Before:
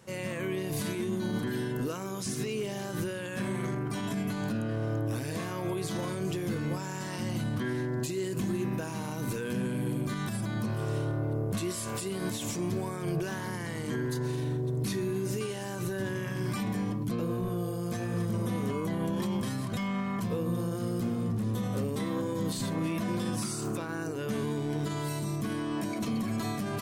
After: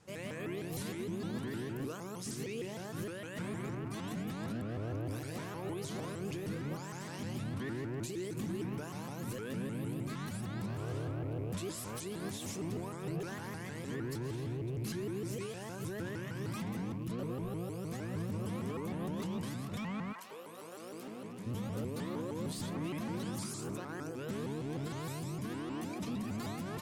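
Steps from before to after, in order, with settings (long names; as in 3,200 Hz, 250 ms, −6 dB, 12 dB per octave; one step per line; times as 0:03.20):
loose part that buzzes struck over −37 dBFS, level −44 dBFS
0:20.12–0:21.45: high-pass filter 930 Hz → 280 Hz 12 dB per octave
pitch modulation by a square or saw wave saw up 6.5 Hz, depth 250 cents
level −7 dB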